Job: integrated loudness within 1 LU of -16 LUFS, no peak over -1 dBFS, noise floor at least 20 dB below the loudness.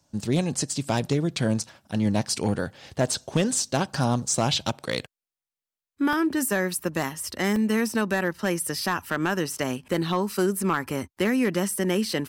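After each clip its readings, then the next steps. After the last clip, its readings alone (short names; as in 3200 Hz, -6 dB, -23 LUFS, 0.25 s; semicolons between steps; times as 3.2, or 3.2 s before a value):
clipped 0.5%; flat tops at -15.0 dBFS; dropouts 2; longest dropout 1.8 ms; loudness -26.0 LUFS; peak -15.0 dBFS; loudness target -16.0 LUFS
-> clip repair -15 dBFS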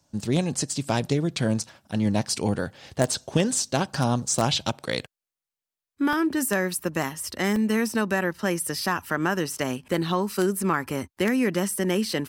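clipped 0.0%; dropouts 2; longest dropout 1.8 ms
-> interpolate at 6.13/7.56, 1.8 ms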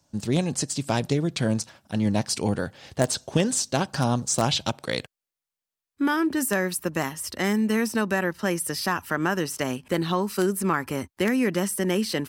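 dropouts 0; loudness -25.5 LUFS; peak -6.0 dBFS; loudness target -16.0 LUFS
-> gain +9.5 dB; limiter -1 dBFS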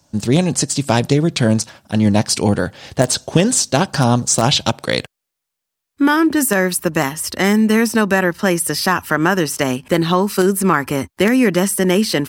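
loudness -16.5 LUFS; peak -1.0 dBFS; noise floor -80 dBFS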